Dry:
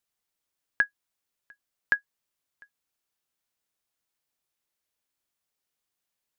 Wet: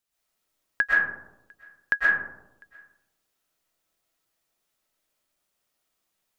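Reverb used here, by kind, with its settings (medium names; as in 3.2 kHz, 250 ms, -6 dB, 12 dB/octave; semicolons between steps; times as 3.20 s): algorithmic reverb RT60 0.92 s, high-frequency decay 0.3×, pre-delay 85 ms, DRR -7.5 dB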